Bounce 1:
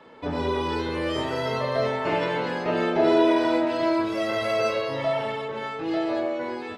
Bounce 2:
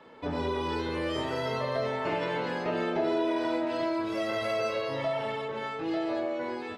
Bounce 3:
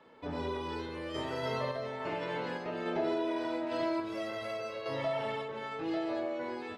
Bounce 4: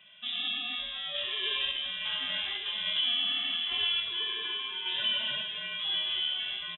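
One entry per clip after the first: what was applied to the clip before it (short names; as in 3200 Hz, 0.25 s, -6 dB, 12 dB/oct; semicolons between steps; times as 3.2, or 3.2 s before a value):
compressor 2.5:1, threshold -24 dBFS, peak gain reduction 6.5 dB; gain -3 dB
random-step tremolo; gain -2.5 dB
inverted band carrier 3700 Hz; echo 1.157 s -12.5 dB; gain +2.5 dB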